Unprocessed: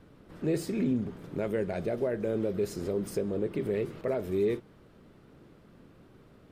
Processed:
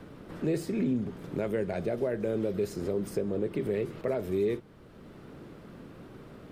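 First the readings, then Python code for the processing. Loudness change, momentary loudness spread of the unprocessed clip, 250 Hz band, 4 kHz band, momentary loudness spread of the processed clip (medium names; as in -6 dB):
0.0 dB, 4 LU, 0.0 dB, -0.5 dB, 19 LU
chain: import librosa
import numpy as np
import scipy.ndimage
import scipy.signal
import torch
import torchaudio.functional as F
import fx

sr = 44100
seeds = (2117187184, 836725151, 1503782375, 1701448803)

y = fx.band_squash(x, sr, depth_pct=40)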